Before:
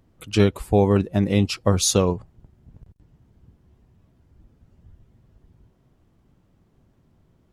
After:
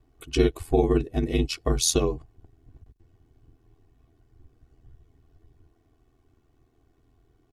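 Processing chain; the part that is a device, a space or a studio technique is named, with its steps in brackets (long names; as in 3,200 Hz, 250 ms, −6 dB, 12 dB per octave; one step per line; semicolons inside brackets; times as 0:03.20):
dynamic equaliser 1,100 Hz, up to −5 dB, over −37 dBFS, Q 0.91
ring-modulated robot voice (ring modulation 41 Hz; comb filter 2.7 ms, depth 86%)
level −2 dB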